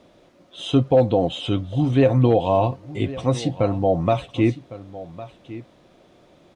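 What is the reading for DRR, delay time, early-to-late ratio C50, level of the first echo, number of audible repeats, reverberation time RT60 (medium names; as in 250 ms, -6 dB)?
no reverb, 1106 ms, no reverb, -16.5 dB, 1, no reverb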